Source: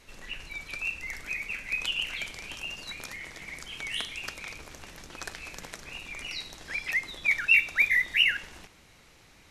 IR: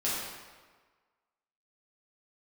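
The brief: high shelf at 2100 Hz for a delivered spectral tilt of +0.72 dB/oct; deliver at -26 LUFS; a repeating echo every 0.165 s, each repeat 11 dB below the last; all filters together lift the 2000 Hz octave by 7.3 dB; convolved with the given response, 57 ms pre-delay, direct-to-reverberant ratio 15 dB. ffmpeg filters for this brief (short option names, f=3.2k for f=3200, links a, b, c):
-filter_complex "[0:a]equalizer=f=2k:t=o:g=6,highshelf=f=2.1k:g=4.5,aecho=1:1:165|330|495:0.282|0.0789|0.0221,asplit=2[a][b];[1:a]atrim=start_sample=2205,adelay=57[c];[b][c]afir=irnorm=-1:irlink=0,volume=-23dB[d];[a][d]amix=inputs=2:normalize=0,volume=-5.5dB"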